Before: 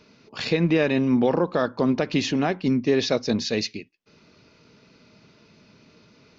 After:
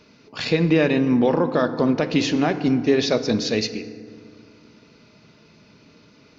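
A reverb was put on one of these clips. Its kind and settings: FDN reverb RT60 2.1 s, low-frequency decay 1.3×, high-frequency decay 0.5×, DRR 10 dB; gain +2 dB

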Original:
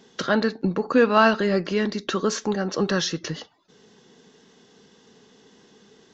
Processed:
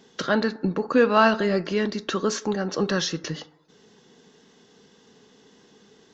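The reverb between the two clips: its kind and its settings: FDN reverb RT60 1 s, low-frequency decay 0.75×, high-frequency decay 0.35×, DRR 17 dB; gain -1 dB

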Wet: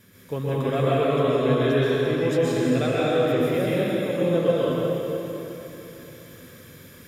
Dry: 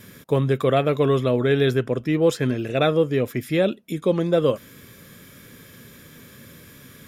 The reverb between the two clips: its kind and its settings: plate-style reverb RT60 3.6 s, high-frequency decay 0.85×, pre-delay 0.11 s, DRR -8.5 dB; gain -9.5 dB

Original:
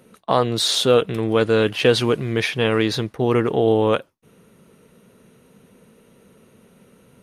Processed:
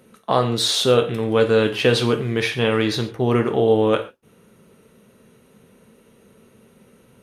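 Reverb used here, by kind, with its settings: non-linear reverb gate 0.16 s falling, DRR 6 dB; gain -1 dB

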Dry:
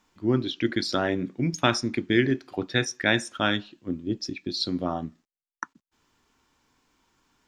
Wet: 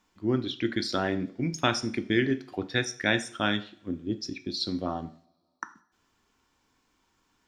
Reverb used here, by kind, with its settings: two-slope reverb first 0.48 s, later 2.3 s, from -27 dB, DRR 11 dB; gain -3 dB

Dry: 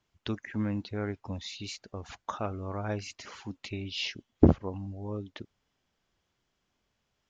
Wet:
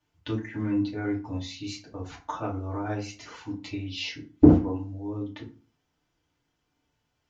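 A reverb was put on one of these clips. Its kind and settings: FDN reverb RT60 0.36 s, low-frequency decay 1.3×, high-frequency decay 0.65×, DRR -5.5 dB; gain -5 dB

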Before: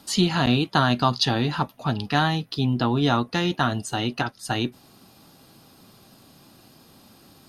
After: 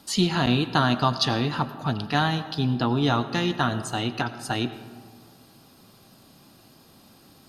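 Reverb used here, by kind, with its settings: digital reverb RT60 1.8 s, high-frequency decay 0.4×, pre-delay 55 ms, DRR 12.5 dB; gain -1.5 dB

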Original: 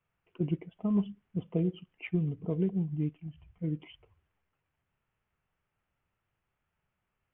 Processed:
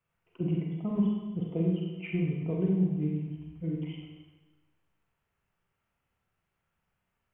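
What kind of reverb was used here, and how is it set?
Schroeder reverb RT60 1.2 s, combs from 33 ms, DRR -2 dB; gain -2 dB

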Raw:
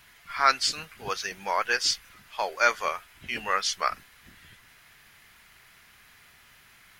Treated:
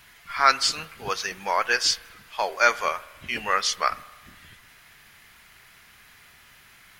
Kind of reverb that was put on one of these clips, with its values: spring tank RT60 1.3 s, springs 38 ms, chirp 70 ms, DRR 18 dB; gain +3 dB

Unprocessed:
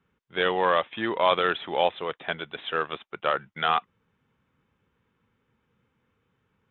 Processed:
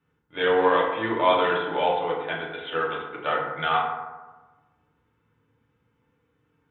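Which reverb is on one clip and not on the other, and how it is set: FDN reverb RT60 1.2 s, low-frequency decay 1×, high-frequency decay 0.4×, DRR -5 dB; gain -5 dB

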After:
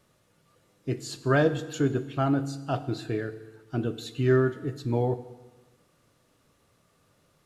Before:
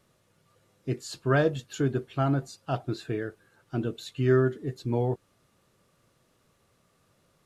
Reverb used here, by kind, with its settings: FDN reverb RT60 1.2 s, low-frequency decay 1.1×, high-frequency decay 0.95×, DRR 11 dB; gain +1 dB

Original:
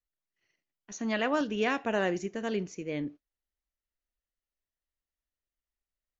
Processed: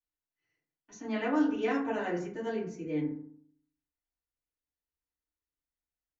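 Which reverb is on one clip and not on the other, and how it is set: FDN reverb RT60 0.59 s, low-frequency decay 1.25×, high-frequency decay 0.35×, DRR -10 dB; gain -14.5 dB

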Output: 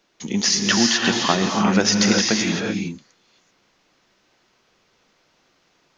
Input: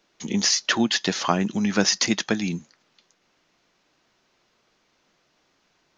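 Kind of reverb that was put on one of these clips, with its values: non-linear reverb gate 0.41 s rising, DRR 0 dB; gain +1.5 dB

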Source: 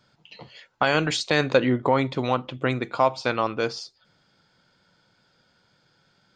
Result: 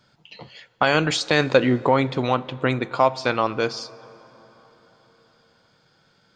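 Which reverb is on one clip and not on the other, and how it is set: plate-style reverb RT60 4.6 s, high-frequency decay 0.5×, DRR 19.5 dB; gain +2.5 dB

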